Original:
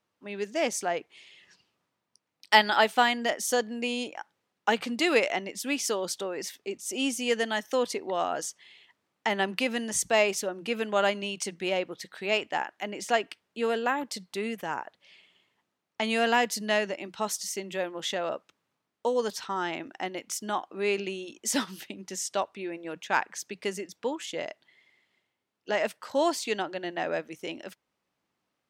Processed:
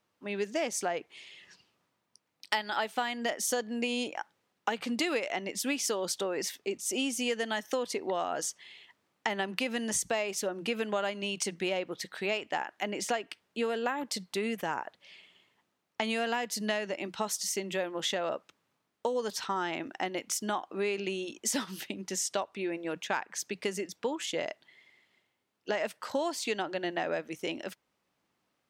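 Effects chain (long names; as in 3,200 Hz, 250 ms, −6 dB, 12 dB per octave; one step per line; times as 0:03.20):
downward compressor 8 to 1, threshold −30 dBFS, peak gain reduction 17 dB
level +2.5 dB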